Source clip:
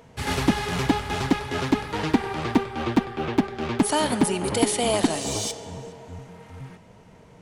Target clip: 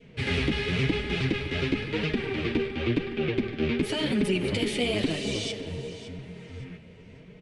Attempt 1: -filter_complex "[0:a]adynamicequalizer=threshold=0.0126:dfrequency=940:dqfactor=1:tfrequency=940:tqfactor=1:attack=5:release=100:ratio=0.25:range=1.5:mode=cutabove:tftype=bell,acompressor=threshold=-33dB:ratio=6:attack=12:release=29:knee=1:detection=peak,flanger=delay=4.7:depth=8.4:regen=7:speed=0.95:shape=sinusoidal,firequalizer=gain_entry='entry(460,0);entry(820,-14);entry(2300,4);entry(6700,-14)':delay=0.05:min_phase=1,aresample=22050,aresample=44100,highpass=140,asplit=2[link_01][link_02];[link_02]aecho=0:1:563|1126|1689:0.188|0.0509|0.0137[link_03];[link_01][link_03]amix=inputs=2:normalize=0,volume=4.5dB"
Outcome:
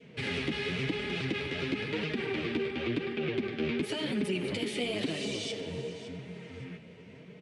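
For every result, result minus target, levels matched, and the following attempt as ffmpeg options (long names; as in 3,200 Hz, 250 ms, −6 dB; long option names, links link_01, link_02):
downward compressor: peak gain reduction +6 dB; 125 Hz band −3.0 dB
-filter_complex "[0:a]adynamicequalizer=threshold=0.0126:dfrequency=940:dqfactor=1:tfrequency=940:tqfactor=1:attack=5:release=100:ratio=0.25:range=1.5:mode=cutabove:tftype=bell,acompressor=threshold=-26dB:ratio=6:attack=12:release=29:knee=1:detection=peak,flanger=delay=4.7:depth=8.4:regen=7:speed=0.95:shape=sinusoidal,firequalizer=gain_entry='entry(460,0);entry(820,-14);entry(2300,4);entry(6700,-14)':delay=0.05:min_phase=1,aresample=22050,aresample=44100,highpass=140,asplit=2[link_01][link_02];[link_02]aecho=0:1:563|1126|1689:0.188|0.0509|0.0137[link_03];[link_01][link_03]amix=inputs=2:normalize=0,volume=4.5dB"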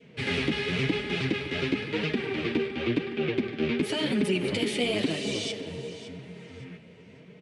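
125 Hz band −3.0 dB
-filter_complex "[0:a]adynamicequalizer=threshold=0.0126:dfrequency=940:dqfactor=1:tfrequency=940:tqfactor=1:attack=5:release=100:ratio=0.25:range=1.5:mode=cutabove:tftype=bell,acompressor=threshold=-26dB:ratio=6:attack=12:release=29:knee=1:detection=peak,flanger=delay=4.7:depth=8.4:regen=7:speed=0.95:shape=sinusoidal,firequalizer=gain_entry='entry(460,0);entry(820,-14);entry(2300,4);entry(6700,-14)':delay=0.05:min_phase=1,aresample=22050,aresample=44100,asplit=2[link_01][link_02];[link_02]aecho=0:1:563|1126|1689:0.188|0.0509|0.0137[link_03];[link_01][link_03]amix=inputs=2:normalize=0,volume=4.5dB"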